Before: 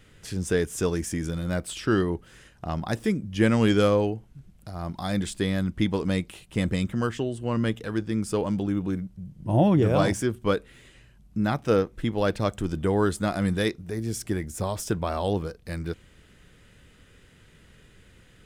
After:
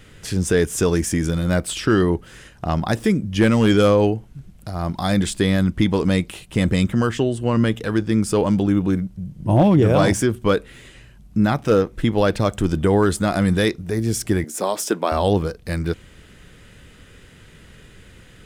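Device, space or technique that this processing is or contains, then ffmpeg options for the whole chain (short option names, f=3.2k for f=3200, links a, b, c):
clipper into limiter: -filter_complex "[0:a]asettb=1/sr,asplit=3[a][b][c];[a]atrim=end=14.444[d];[b]atrim=start=14.44:end=15.12,asetpts=PTS-STARTPTS,afade=t=in:d=0.004:c=qsin,afade=t=out:st=0.676:d=0.004:c=qsin,highpass=f=240:w=0.5412,highpass=f=240:w=1.3066[e];[c]atrim=start=15.116[f];[d][e]acrossfade=d=0.004:c1=hsin:c2=qsin[g];[g][f]acrossfade=d=0.004:c1=qsin:c2=hsin,asoftclip=type=hard:threshold=-13dB,alimiter=limit=-16dB:level=0:latency=1,volume=8.5dB"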